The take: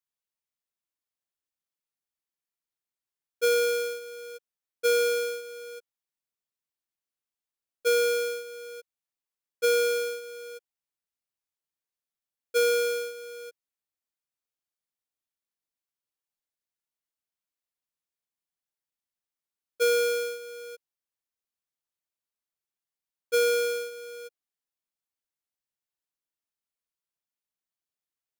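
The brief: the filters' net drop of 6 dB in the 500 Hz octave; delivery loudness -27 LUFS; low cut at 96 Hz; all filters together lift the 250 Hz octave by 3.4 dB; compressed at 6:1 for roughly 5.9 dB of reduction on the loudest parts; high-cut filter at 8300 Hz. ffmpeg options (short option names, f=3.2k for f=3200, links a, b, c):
-af "highpass=96,lowpass=8.3k,equalizer=f=250:t=o:g=6.5,equalizer=f=500:t=o:g=-7.5,acompressor=threshold=-31dB:ratio=6,volume=8.5dB"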